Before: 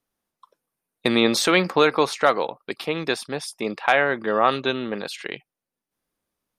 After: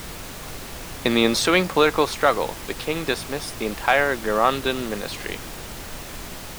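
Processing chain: added noise pink -35 dBFS

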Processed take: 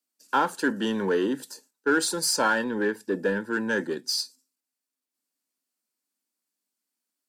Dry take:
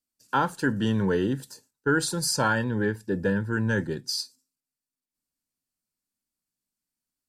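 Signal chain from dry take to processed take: high-pass 240 Hz 24 dB/octave; in parallel at -7.5 dB: overload inside the chain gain 29 dB

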